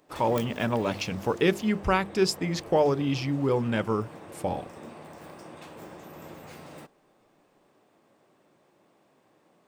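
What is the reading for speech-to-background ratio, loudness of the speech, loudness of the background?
17.5 dB, −27.0 LKFS, −44.5 LKFS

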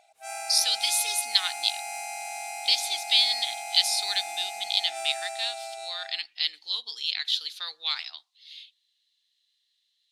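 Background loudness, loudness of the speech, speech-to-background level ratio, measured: −35.0 LKFS, −26.0 LKFS, 9.0 dB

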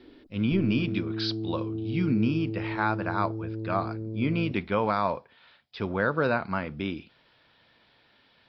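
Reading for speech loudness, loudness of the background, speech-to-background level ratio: −29.0 LKFS, −34.0 LKFS, 5.0 dB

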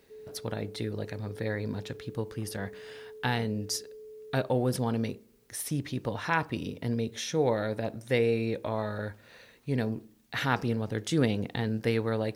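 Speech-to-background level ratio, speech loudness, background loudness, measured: 16.0 dB, −31.5 LKFS, −47.5 LKFS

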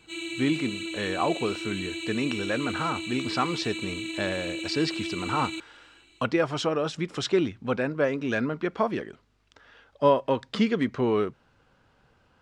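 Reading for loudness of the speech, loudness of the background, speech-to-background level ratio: −28.5 LKFS, −33.5 LKFS, 5.0 dB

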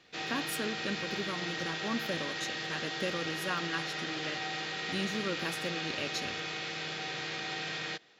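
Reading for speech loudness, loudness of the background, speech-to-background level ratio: −38.5 LKFS, −35.5 LKFS, −3.0 dB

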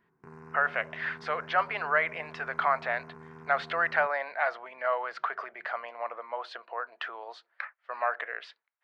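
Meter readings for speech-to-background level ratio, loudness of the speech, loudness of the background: 18.5 dB, −31.0 LKFS, −49.5 LKFS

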